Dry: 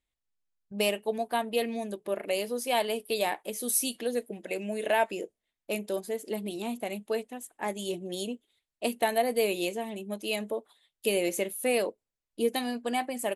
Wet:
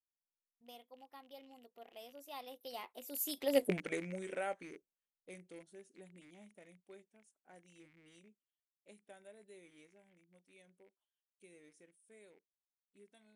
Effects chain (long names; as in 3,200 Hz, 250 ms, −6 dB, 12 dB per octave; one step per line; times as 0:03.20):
loose part that buzzes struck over −49 dBFS, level −30 dBFS
source passing by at 0:03.66, 50 m/s, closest 3.3 metres
level +6.5 dB